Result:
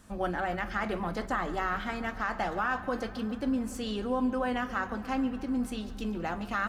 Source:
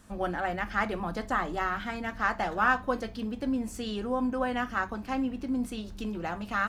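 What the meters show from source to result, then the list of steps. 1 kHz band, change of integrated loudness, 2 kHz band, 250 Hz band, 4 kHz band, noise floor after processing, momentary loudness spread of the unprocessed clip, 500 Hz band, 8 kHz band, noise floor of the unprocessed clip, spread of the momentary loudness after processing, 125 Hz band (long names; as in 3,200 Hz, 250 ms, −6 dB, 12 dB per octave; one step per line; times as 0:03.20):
−2.0 dB, −1.5 dB, −3.0 dB, 0.0 dB, −0.5 dB, −42 dBFS, 8 LU, −0.5 dB, −0.5 dB, −44 dBFS, 5 LU, 0.0 dB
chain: brickwall limiter −20 dBFS, peak gain reduction 8 dB
feedback echo with a low-pass in the loop 142 ms, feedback 81%, low-pass 4,300 Hz, level −17 dB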